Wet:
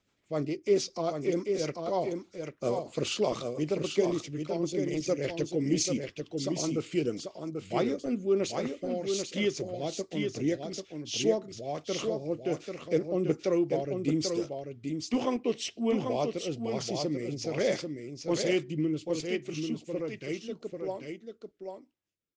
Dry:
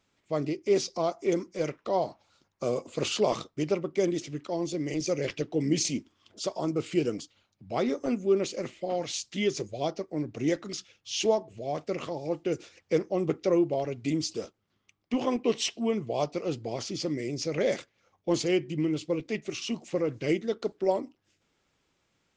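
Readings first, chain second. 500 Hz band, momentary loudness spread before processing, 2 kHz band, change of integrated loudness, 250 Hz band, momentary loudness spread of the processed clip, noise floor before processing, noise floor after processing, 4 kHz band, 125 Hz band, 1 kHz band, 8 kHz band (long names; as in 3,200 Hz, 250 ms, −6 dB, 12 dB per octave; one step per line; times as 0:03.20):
−1.5 dB, 8 LU, −1.5 dB, −1.5 dB, −1.0 dB, 9 LU, −75 dBFS, −66 dBFS, −1.5 dB, −0.5 dB, −3.0 dB, −1.0 dB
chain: fade-out on the ending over 3.99 s
rotating-speaker cabinet horn 7 Hz, later 1.2 Hz, at 0:06.83
on a send: single-tap delay 790 ms −5.5 dB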